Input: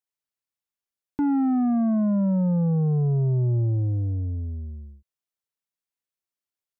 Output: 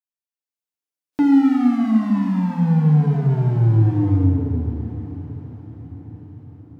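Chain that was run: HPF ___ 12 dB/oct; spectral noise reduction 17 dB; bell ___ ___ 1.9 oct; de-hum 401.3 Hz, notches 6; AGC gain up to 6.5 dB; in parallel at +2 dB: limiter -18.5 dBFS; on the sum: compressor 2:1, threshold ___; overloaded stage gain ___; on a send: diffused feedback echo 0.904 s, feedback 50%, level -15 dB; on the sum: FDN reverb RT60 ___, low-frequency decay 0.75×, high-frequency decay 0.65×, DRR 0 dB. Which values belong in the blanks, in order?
140 Hz, 1500 Hz, -2.5 dB, -17 dBFS, 17 dB, 2.3 s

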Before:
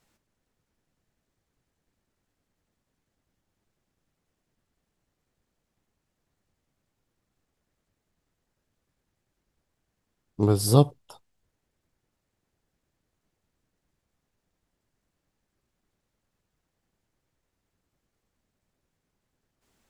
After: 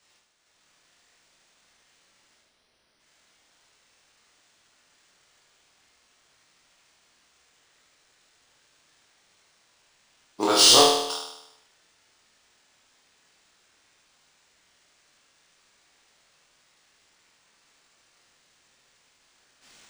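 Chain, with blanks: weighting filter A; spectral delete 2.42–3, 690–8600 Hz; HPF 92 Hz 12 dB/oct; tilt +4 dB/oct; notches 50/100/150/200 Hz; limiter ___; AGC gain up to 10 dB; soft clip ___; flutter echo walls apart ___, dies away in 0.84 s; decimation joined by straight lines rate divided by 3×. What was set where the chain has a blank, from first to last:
-13 dBFS, -9 dBFS, 4.3 m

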